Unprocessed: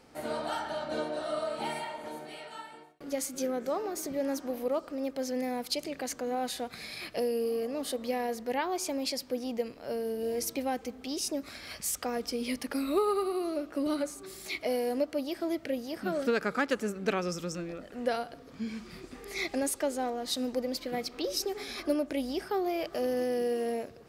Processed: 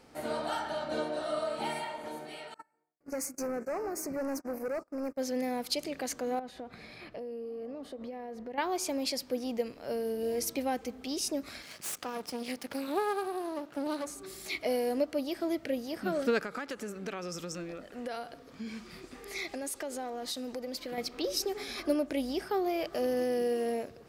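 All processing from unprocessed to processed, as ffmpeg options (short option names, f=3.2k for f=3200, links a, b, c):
-filter_complex "[0:a]asettb=1/sr,asplit=3[a][b][c];[a]atrim=end=2.544[d];[b]atrim=start=2.54:end=5.18,asetpts=PTS-STARTPTS,afade=t=in:d=0.004:c=qsin,afade=t=out:st=2.636:d=0.004:c=qsin,agate=range=-28dB:threshold=-41dB:ratio=16:release=100:detection=peak,asoftclip=type=hard:threshold=-31dB,asuperstop=centerf=3400:order=4:qfactor=1.3[e];[c]atrim=start=5.176[f];[d][e]acrossfade=d=0.004:c1=hsin:c2=qsin[g];[g][f]acrossfade=d=0.004:c1=qsin:c2=hsin,asettb=1/sr,asplit=3[h][i][j];[h]atrim=end=6.394[k];[i]atrim=start=6.39:end=8.58,asetpts=PTS-STARTPTS,afade=t=in:d=0.004:c=qsin,afade=t=out:st=2.186:d=0.004:c=qsin,acompressor=threshold=-36dB:ratio=10:attack=3.2:release=140:knee=1:detection=peak,lowpass=f=1.1k:p=1[l];[j]atrim=start=8.576[m];[k][l]acrossfade=d=0.004:c1=hsin:c2=qsin[n];[n][m]acrossfade=d=0.004:c1=qsin:c2=hsin,asettb=1/sr,asplit=3[o][p][q];[o]atrim=end=11.624[r];[p]atrim=start=11.62:end=14.07,asetpts=PTS-STARTPTS,afade=t=in:d=0.004:c=qsin,afade=t=out:st=2.446:d=0.004:c=qsin,aeval=exprs='max(val(0),0)':c=same,highpass=130[s];[q]atrim=start=14.066[t];[r][s]acrossfade=d=0.004:c1=hsin:c2=qsin[u];[u][t]acrossfade=d=0.004:c1=qsin:c2=hsin,asettb=1/sr,asplit=3[v][w][x];[v]atrim=end=16.404[y];[w]atrim=start=16.4:end=20.98,asetpts=PTS-STARTPTS,afade=t=in:d=0.004:c=qsin,afade=t=out:st=4.576:d=0.004:c=qsin,acompressor=threshold=-32dB:ratio=6:attack=3.2:release=140:knee=1:detection=peak,lowshelf=f=320:g=-4.5[z];[x]atrim=start=20.976[aa];[y][z]acrossfade=d=0.004:c1=hsin:c2=qsin[ab];[ab][aa]acrossfade=d=0.004:c1=qsin:c2=hsin"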